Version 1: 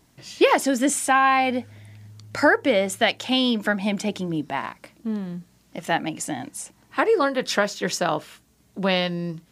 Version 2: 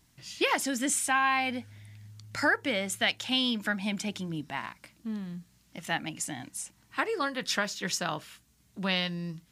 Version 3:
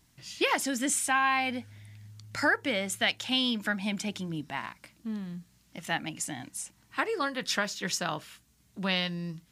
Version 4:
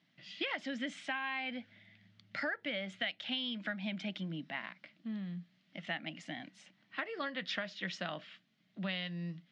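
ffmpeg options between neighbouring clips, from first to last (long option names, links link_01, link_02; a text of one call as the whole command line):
ffmpeg -i in.wav -af "equalizer=frequency=490:width=0.61:gain=-10.5,volume=-3dB" out.wav
ffmpeg -i in.wav -af anull out.wav
ffmpeg -i in.wav -af "highpass=frequency=160:width=0.5412,highpass=frequency=160:width=1.3066,equalizer=frequency=180:width_type=q:width=4:gain=5,equalizer=frequency=420:width_type=q:width=4:gain=-7,equalizer=frequency=620:width_type=q:width=4:gain=6,equalizer=frequency=950:width_type=q:width=4:gain=-8,equalizer=frequency=2000:width_type=q:width=4:gain=6,equalizer=frequency=3200:width_type=q:width=4:gain=5,lowpass=frequency=4200:width=0.5412,lowpass=frequency=4200:width=1.3066,acompressor=threshold=-29dB:ratio=4,volume=-5.5dB" out.wav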